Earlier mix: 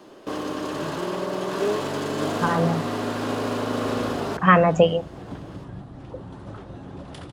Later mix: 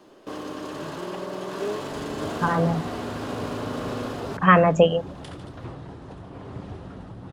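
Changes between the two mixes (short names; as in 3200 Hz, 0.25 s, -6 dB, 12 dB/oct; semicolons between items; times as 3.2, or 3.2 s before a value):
first sound -5.0 dB; second sound: entry -1.90 s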